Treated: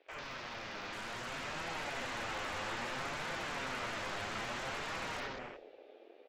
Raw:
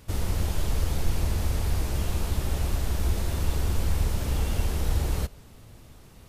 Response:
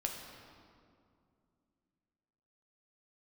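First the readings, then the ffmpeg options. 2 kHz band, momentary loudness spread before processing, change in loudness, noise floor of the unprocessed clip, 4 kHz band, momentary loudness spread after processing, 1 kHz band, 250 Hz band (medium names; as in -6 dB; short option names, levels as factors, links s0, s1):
+3.0 dB, 1 LU, -11.0 dB, -50 dBFS, -3.5 dB, 7 LU, 0.0 dB, -12.5 dB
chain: -filter_complex "[0:a]highpass=f=390:w=0.5412,highpass=f=390:w=1.3066,equalizer=f=400:t=q:w=4:g=4,equalizer=f=1000:t=q:w=4:g=-3,equalizer=f=1700:t=q:w=4:g=5,equalizer=f=2400:t=q:w=4:g=8,equalizer=f=3500:t=q:w=4:g=4,lowpass=f=3900:w=0.5412,lowpass=f=3900:w=1.3066,aresample=16000,aeval=exprs='(mod(70.8*val(0)+1,2)-1)/70.8':c=same,aresample=44100,asplit=2[s0][s1];[s1]adelay=201,lowpass=f=1900:p=1,volume=0.335,asplit=2[s2][s3];[s3]adelay=201,lowpass=f=1900:p=1,volume=0.29,asplit=2[s4][s5];[s5]adelay=201,lowpass=f=1900:p=1,volume=0.29[s6];[s0][s2][s4][s6]amix=inputs=4:normalize=0[s7];[1:a]atrim=start_sample=2205,afade=t=out:st=0.38:d=0.01,atrim=end_sample=17199[s8];[s7][s8]afir=irnorm=-1:irlink=0,acrossover=split=630[s9][s10];[s9]alimiter=level_in=13.3:limit=0.0631:level=0:latency=1,volume=0.075[s11];[s11][s10]amix=inputs=2:normalize=0,aeval=exprs='(mod(39.8*val(0)+1,2)-1)/39.8':c=same,flanger=delay=5.9:depth=4.2:regen=49:speed=0.6:shape=triangular,dynaudnorm=f=240:g=11:m=1.78,afwtdn=0.00316,acrossover=split=2500[s12][s13];[s13]acompressor=threshold=0.00126:ratio=4:attack=1:release=60[s14];[s12][s14]amix=inputs=2:normalize=0,volume=1.78"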